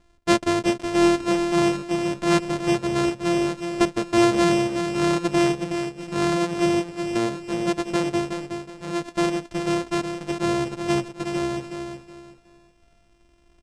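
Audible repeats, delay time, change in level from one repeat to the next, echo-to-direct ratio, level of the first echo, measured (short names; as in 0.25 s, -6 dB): 3, 0.369 s, -11.0 dB, -6.5 dB, -7.0 dB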